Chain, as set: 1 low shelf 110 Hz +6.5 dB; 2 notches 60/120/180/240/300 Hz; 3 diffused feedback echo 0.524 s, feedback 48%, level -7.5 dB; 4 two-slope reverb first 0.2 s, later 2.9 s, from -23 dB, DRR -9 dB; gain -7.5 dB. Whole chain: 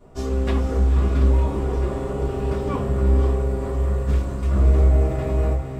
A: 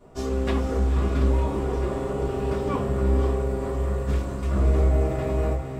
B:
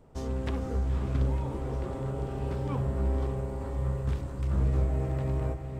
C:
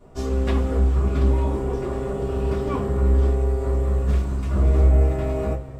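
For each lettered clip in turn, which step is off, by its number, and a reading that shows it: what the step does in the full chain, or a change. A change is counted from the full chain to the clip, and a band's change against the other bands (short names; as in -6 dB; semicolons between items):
1, 125 Hz band -4.0 dB; 4, echo-to-direct 10.0 dB to -6.5 dB; 3, momentary loudness spread change +1 LU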